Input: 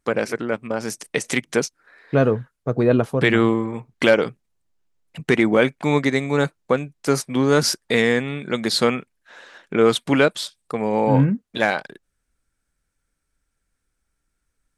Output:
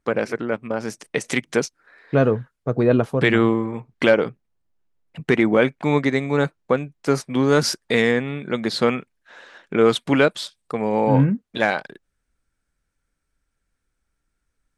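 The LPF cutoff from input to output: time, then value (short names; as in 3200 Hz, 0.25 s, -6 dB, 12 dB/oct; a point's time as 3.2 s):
LPF 6 dB/oct
3200 Hz
from 1.21 s 6500 Hz
from 3.38 s 3500 Hz
from 4.12 s 2100 Hz
from 5.22 s 3400 Hz
from 7.34 s 6500 Hz
from 8.11 s 2600 Hz
from 8.88 s 5700 Hz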